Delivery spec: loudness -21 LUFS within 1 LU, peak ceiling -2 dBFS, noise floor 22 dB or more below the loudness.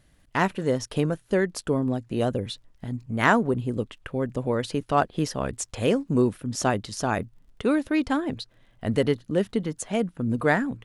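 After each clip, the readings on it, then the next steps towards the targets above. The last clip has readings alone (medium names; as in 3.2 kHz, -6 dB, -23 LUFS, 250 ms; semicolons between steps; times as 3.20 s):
tick rate 22 per s; loudness -26.0 LUFS; peak level -6.0 dBFS; loudness target -21.0 LUFS
-> de-click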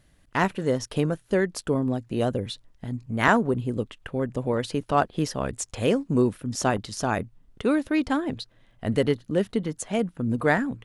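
tick rate 0 per s; loudness -26.5 LUFS; peak level -6.0 dBFS; loudness target -21.0 LUFS
-> trim +5.5 dB; peak limiter -2 dBFS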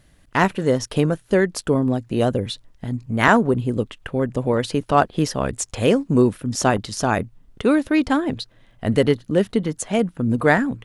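loudness -21.0 LUFS; peak level -2.0 dBFS; noise floor -55 dBFS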